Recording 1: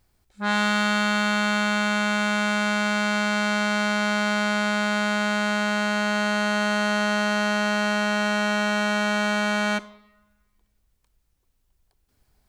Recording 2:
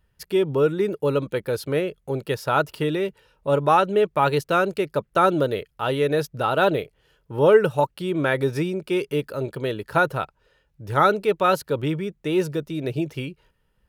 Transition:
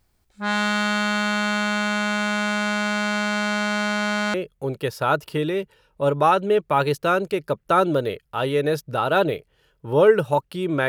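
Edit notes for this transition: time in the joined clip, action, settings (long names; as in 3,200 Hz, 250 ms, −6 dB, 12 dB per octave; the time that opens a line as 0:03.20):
recording 1
0:04.34: continue with recording 2 from 0:01.80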